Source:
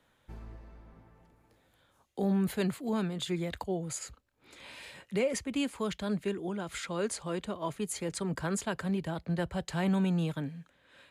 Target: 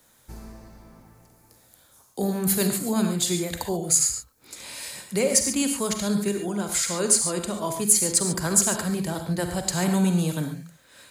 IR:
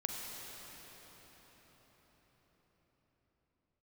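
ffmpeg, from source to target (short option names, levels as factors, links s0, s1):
-filter_complex "[0:a]aexciter=amount=2.9:drive=9.1:freq=4500[s0];[1:a]atrim=start_sample=2205,atrim=end_sample=6615[s1];[s0][s1]afir=irnorm=-1:irlink=0,volume=2.11"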